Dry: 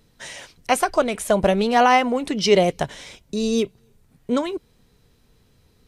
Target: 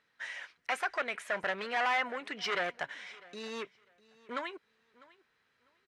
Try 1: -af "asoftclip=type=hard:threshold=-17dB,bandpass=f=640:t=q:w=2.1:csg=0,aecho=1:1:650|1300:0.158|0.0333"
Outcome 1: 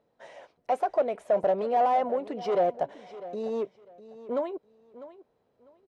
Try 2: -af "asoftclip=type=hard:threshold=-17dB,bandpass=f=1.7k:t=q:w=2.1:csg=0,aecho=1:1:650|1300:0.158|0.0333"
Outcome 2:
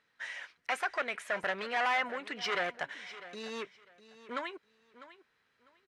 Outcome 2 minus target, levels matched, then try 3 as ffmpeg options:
echo-to-direct +6.5 dB
-af "asoftclip=type=hard:threshold=-17dB,bandpass=f=1.7k:t=q:w=2.1:csg=0,aecho=1:1:650|1300:0.075|0.0157"

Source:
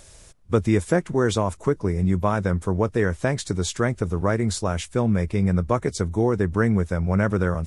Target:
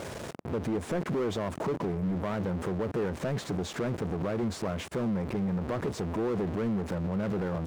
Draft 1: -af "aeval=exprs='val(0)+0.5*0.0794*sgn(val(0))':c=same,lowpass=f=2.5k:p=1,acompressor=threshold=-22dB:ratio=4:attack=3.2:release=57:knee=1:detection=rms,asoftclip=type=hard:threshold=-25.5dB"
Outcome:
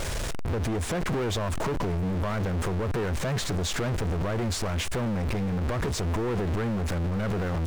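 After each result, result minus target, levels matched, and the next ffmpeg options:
2000 Hz band +3.5 dB; 125 Hz band +3.0 dB
-af "aeval=exprs='val(0)+0.5*0.0794*sgn(val(0))':c=same,lowpass=f=660:p=1,acompressor=threshold=-22dB:ratio=4:attack=3.2:release=57:knee=1:detection=rms,asoftclip=type=hard:threshold=-25.5dB"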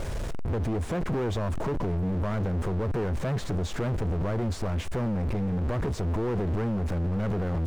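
125 Hz band +4.0 dB
-af "aeval=exprs='val(0)+0.5*0.0794*sgn(val(0))':c=same,lowpass=f=660:p=1,acompressor=threshold=-22dB:ratio=4:attack=3.2:release=57:knee=1:detection=rms,highpass=170,asoftclip=type=hard:threshold=-25.5dB"

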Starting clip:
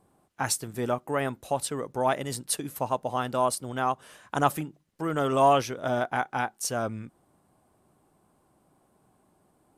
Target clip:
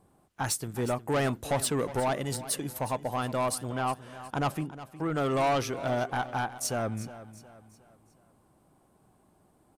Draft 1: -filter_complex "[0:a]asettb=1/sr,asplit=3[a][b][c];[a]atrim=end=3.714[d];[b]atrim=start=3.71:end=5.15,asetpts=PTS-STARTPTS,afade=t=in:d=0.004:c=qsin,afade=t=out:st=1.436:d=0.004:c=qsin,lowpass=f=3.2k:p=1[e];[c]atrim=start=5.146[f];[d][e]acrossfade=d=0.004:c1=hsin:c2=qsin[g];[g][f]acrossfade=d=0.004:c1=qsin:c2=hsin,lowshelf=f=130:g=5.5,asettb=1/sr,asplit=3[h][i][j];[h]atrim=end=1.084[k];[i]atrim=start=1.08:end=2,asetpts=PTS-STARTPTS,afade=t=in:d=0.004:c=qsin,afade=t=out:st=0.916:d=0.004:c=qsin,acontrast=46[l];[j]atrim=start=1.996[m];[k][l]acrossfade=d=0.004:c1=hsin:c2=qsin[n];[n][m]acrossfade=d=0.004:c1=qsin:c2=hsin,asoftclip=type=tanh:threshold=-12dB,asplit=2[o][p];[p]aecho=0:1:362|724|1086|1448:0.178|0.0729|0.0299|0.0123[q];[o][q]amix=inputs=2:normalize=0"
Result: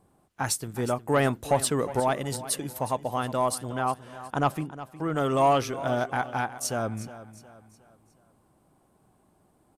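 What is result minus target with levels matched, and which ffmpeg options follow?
soft clip: distortion -12 dB
-filter_complex "[0:a]asettb=1/sr,asplit=3[a][b][c];[a]atrim=end=3.714[d];[b]atrim=start=3.71:end=5.15,asetpts=PTS-STARTPTS,afade=t=in:d=0.004:c=qsin,afade=t=out:st=1.436:d=0.004:c=qsin,lowpass=f=3.2k:p=1[e];[c]atrim=start=5.146[f];[d][e]acrossfade=d=0.004:c1=hsin:c2=qsin[g];[g][f]acrossfade=d=0.004:c1=qsin:c2=hsin,lowshelf=f=130:g=5.5,asettb=1/sr,asplit=3[h][i][j];[h]atrim=end=1.084[k];[i]atrim=start=1.08:end=2,asetpts=PTS-STARTPTS,afade=t=in:d=0.004:c=qsin,afade=t=out:st=0.916:d=0.004:c=qsin,acontrast=46[l];[j]atrim=start=1.996[m];[k][l]acrossfade=d=0.004:c1=hsin:c2=qsin[n];[n][m]acrossfade=d=0.004:c1=qsin:c2=hsin,asoftclip=type=tanh:threshold=-22.5dB,asplit=2[o][p];[p]aecho=0:1:362|724|1086|1448:0.178|0.0729|0.0299|0.0123[q];[o][q]amix=inputs=2:normalize=0"

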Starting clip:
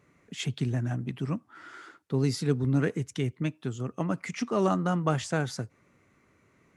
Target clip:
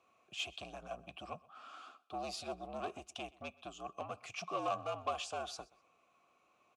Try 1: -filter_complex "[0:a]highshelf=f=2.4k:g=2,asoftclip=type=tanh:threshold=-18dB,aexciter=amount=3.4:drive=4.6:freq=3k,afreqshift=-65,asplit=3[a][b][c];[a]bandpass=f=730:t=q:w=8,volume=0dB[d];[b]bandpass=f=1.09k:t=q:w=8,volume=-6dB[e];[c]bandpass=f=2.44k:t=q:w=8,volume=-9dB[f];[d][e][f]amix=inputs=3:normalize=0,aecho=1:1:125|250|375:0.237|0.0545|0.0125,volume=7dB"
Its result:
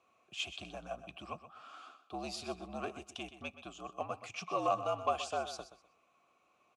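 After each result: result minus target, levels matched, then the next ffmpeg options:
echo-to-direct +10.5 dB; soft clip: distortion -9 dB
-filter_complex "[0:a]highshelf=f=2.4k:g=2,asoftclip=type=tanh:threshold=-18dB,aexciter=amount=3.4:drive=4.6:freq=3k,afreqshift=-65,asplit=3[a][b][c];[a]bandpass=f=730:t=q:w=8,volume=0dB[d];[b]bandpass=f=1.09k:t=q:w=8,volume=-6dB[e];[c]bandpass=f=2.44k:t=q:w=8,volume=-9dB[f];[d][e][f]amix=inputs=3:normalize=0,aecho=1:1:125|250:0.0708|0.0163,volume=7dB"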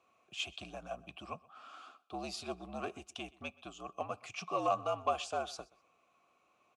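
soft clip: distortion -9 dB
-filter_complex "[0:a]highshelf=f=2.4k:g=2,asoftclip=type=tanh:threshold=-26.5dB,aexciter=amount=3.4:drive=4.6:freq=3k,afreqshift=-65,asplit=3[a][b][c];[a]bandpass=f=730:t=q:w=8,volume=0dB[d];[b]bandpass=f=1.09k:t=q:w=8,volume=-6dB[e];[c]bandpass=f=2.44k:t=q:w=8,volume=-9dB[f];[d][e][f]amix=inputs=3:normalize=0,aecho=1:1:125|250:0.0708|0.0163,volume=7dB"

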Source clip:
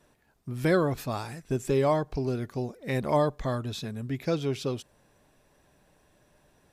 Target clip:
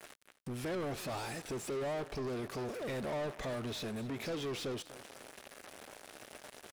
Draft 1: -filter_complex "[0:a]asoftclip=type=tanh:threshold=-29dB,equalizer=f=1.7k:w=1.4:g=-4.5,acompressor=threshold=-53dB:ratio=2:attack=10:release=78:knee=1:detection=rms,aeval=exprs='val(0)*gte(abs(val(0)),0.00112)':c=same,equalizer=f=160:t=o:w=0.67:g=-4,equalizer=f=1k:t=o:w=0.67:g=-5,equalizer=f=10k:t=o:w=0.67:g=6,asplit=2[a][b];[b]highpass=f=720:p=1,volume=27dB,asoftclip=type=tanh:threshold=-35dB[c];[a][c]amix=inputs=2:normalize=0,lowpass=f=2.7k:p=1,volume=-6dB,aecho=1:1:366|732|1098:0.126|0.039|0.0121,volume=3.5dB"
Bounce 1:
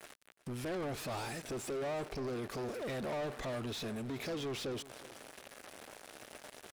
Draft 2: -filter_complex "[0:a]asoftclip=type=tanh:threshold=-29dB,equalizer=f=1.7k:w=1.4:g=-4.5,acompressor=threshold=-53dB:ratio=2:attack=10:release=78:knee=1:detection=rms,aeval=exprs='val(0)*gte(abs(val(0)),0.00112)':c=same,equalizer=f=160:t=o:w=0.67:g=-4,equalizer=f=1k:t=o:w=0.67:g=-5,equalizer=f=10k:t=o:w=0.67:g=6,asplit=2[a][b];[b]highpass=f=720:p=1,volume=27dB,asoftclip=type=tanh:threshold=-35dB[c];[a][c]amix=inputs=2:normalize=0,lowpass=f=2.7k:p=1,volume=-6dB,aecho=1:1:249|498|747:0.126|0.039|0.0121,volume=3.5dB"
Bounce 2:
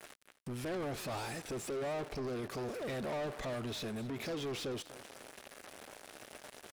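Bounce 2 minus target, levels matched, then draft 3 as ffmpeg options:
soft clip: distortion +10 dB
-filter_complex "[0:a]asoftclip=type=tanh:threshold=-18.5dB,equalizer=f=1.7k:w=1.4:g=-4.5,acompressor=threshold=-53dB:ratio=2:attack=10:release=78:knee=1:detection=rms,aeval=exprs='val(0)*gte(abs(val(0)),0.00112)':c=same,equalizer=f=160:t=o:w=0.67:g=-4,equalizer=f=1k:t=o:w=0.67:g=-5,equalizer=f=10k:t=o:w=0.67:g=6,asplit=2[a][b];[b]highpass=f=720:p=1,volume=27dB,asoftclip=type=tanh:threshold=-35dB[c];[a][c]amix=inputs=2:normalize=0,lowpass=f=2.7k:p=1,volume=-6dB,aecho=1:1:249|498|747:0.126|0.039|0.0121,volume=3.5dB"

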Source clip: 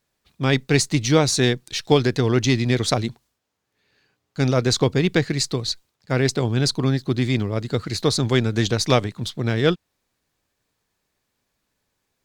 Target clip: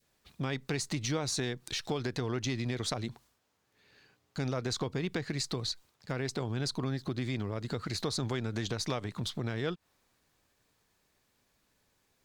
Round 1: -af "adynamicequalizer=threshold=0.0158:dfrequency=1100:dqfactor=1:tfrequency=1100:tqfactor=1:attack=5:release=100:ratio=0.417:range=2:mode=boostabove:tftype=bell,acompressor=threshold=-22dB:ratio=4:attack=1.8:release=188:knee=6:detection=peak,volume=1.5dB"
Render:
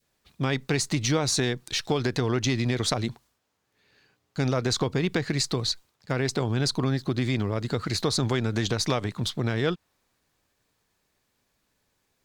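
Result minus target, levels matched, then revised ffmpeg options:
compressor: peak gain reduction -8 dB
-af "adynamicequalizer=threshold=0.0158:dfrequency=1100:dqfactor=1:tfrequency=1100:tqfactor=1:attack=5:release=100:ratio=0.417:range=2:mode=boostabove:tftype=bell,acompressor=threshold=-33dB:ratio=4:attack=1.8:release=188:knee=6:detection=peak,volume=1.5dB"

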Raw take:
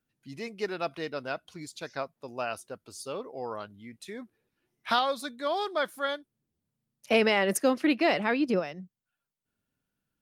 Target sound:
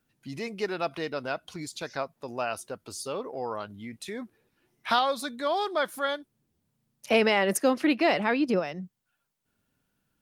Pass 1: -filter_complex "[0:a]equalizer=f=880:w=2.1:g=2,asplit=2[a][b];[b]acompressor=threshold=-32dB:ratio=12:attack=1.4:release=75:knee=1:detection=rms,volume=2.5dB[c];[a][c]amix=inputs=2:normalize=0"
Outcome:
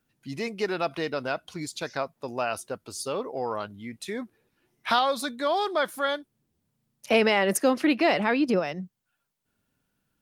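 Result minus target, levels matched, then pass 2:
compressor: peak gain reduction -9 dB
-filter_complex "[0:a]equalizer=f=880:w=2.1:g=2,asplit=2[a][b];[b]acompressor=threshold=-42dB:ratio=12:attack=1.4:release=75:knee=1:detection=rms,volume=2.5dB[c];[a][c]amix=inputs=2:normalize=0"

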